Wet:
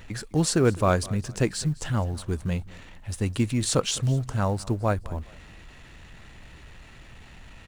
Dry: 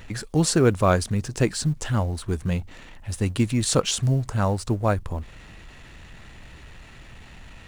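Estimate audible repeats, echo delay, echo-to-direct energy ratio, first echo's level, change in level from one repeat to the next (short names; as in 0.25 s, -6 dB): 2, 0.207 s, -20.5 dB, -21.0 dB, -9.5 dB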